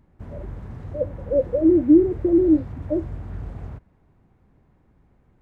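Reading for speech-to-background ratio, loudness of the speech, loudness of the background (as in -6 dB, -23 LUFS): 16.5 dB, -20.0 LUFS, -36.5 LUFS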